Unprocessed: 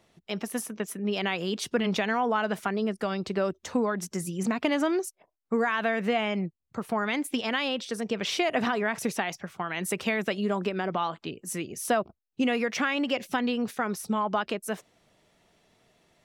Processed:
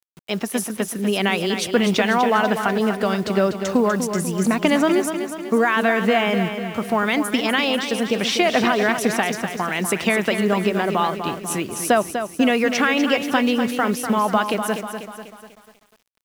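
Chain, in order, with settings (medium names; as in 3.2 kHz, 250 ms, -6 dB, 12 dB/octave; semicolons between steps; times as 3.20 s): bit crusher 9-bit; bit-crushed delay 246 ms, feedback 55%, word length 9-bit, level -8 dB; trim +8 dB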